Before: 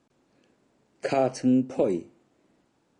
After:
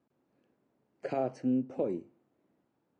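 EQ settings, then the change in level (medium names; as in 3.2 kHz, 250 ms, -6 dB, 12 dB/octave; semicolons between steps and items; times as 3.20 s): high-pass 74 Hz; low-pass 1.4 kHz 6 dB/octave; -7.5 dB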